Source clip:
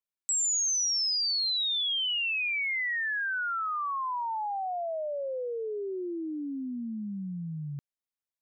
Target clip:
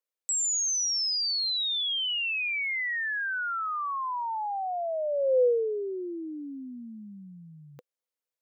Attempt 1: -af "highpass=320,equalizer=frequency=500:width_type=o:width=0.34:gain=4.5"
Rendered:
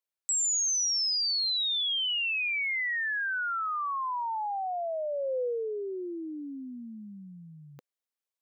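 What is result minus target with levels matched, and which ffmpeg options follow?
500 Hz band −5.0 dB
-af "highpass=320,equalizer=frequency=500:width_type=o:width=0.34:gain=13.5"

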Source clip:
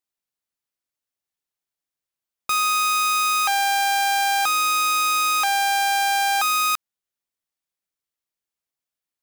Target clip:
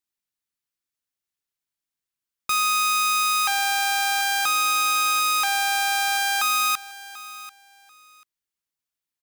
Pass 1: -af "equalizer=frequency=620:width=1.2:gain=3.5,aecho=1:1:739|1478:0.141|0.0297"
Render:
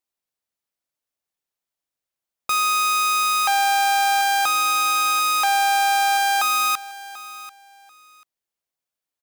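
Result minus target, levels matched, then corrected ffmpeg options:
500 Hz band +4.0 dB
-af "equalizer=frequency=620:width=1.2:gain=-6.5,aecho=1:1:739|1478:0.141|0.0297"

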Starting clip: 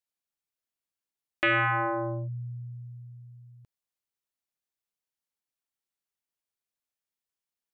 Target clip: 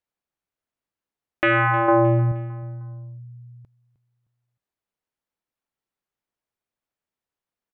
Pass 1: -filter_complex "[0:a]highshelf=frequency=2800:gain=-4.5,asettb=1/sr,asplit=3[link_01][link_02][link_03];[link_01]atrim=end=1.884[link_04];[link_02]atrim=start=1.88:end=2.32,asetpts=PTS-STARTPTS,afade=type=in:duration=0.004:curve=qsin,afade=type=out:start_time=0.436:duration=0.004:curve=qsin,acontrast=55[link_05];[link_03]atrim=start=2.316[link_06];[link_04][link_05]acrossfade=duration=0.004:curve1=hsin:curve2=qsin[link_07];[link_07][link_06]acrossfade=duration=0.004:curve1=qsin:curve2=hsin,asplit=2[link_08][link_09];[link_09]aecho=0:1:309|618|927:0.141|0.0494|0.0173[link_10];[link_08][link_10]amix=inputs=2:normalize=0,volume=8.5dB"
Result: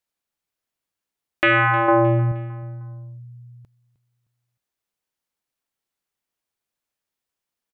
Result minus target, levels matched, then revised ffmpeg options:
4,000 Hz band +4.0 dB
-filter_complex "[0:a]highshelf=frequency=2800:gain=-15,asettb=1/sr,asplit=3[link_01][link_02][link_03];[link_01]atrim=end=1.884[link_04];[link_02]atrim=start=1.88:end=2.32,asetpts=PTS-STARTPTS,afade=type=in:duration=0.004:curve=qsin,afade=type=out:start_time=0.436:duration=0.004:curve=qsin,acontrast=55[link_05];[link_03]atrim=start=2.316[link_06];[link_04][link_05]acrossfade=duration=0.004:curve1=hsin:curve2=qsin[link_07];[link_07][link_06]acrossfade=duration=0.004:curve1=qsin:curve2=hsin,asplit=2[link_08][link_09];[link_09]aecho=0:1:309|618|927:0.141|0.0494|0.0173[link_10];[link_08][link_10]amix=inputs=2:normalize=0,volume=8.5dB"

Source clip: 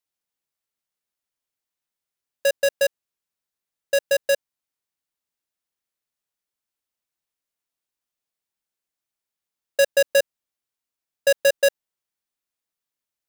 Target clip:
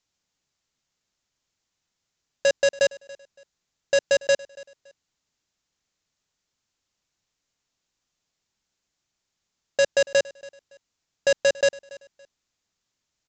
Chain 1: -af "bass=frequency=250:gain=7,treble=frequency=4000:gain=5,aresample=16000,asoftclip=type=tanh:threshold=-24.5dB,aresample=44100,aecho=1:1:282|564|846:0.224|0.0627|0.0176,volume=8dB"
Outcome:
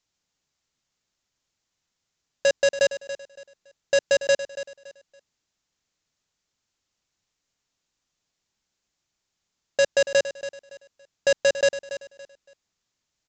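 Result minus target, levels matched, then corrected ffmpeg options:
echo-to-direct +8.5 dB
-af "bass=frequency=250:gain=7,treble=frequency=4000:gain=5,aresample=16000,asoftclip=type=tanh:threshold=-24.5dB,aresample=44100,aecho=1:1:282|564:0.0841|0.0236,volume=8dB"

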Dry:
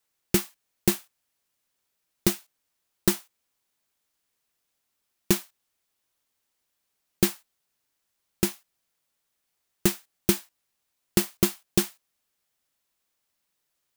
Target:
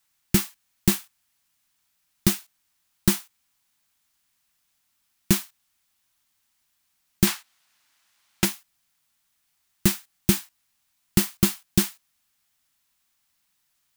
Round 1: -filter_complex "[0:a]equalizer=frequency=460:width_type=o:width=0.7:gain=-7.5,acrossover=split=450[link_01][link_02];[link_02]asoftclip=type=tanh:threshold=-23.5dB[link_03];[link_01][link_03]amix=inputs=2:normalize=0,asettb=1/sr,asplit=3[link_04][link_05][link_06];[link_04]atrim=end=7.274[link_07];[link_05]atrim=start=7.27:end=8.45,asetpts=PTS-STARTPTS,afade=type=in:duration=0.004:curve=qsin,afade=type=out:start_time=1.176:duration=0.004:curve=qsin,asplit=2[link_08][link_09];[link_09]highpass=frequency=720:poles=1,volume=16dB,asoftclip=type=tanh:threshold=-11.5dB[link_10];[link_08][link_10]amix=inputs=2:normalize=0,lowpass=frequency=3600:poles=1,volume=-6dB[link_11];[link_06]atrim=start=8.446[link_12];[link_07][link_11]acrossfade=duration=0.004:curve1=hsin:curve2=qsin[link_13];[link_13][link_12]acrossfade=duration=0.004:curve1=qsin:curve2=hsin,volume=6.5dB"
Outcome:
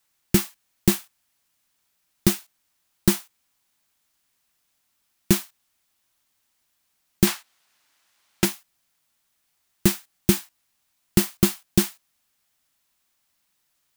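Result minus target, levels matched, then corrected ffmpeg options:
500 Hz band +4.0 dB
-filter_complex "[0:a]equalizer=frequency=460:width_type=o:width=0.7:gain=-18,acrossover=split=450[link_01][link_02];[link_02]asoftclip=type=tanh:threshold=-23.5dB[link_03];[link_01][link_03]amix=inputs=2:normalize=0,asettb=1/sr,asplit=3[link_04][link_05][link_06];[link_04]atrim=end=7.274[link_07];[link_05]atrim=start=7.27:end=8.45,asetpts=PTS-STARTPTS,afade=type=in:duration=0.004:curve=qsin,afade=type=out:start_time=1.176:duration=0.004:curve=qsin,asplit=2[link_08][link_09];[link_09]highpass=frequency=720:poles=1,volume=16dB,asoftclip=type=tanh:threshold=-11.5dB[link_10];[link_08][link_10]amix=inputs=2:normalize=0,lowpass=frequency=3600:poles=1,volume=-6dB[link_11];[link_06]atrim=start=8.446[link_12];[link_07][link_11]acrossfade=duration=0.004:curve1=hsin:curve2=qsin[link_13];[link_13][link_12]acrossfade=duration=0.004:curve1=qsin:curve2=hsin,volume=6.5dB"

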